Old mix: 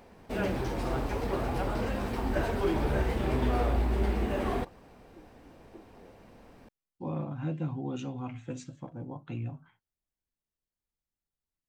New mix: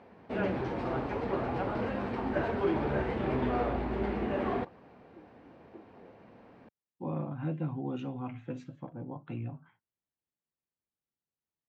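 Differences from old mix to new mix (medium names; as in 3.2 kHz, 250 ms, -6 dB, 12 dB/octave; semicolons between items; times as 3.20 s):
background: remove band-stop 4.3 kHz, Q 30; master: add band-pass 110–2600 Hz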